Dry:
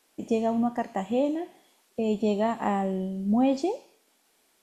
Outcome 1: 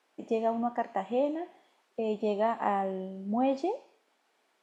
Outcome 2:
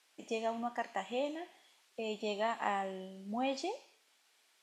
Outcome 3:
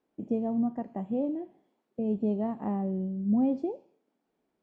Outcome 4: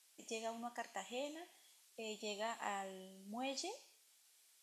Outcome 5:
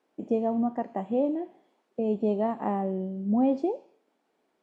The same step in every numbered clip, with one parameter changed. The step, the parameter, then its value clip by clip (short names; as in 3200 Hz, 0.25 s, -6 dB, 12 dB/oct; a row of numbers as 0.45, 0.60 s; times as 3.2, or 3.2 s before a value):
band-pass, frequency: 1000, 2900, 130, 7700, 370 Hz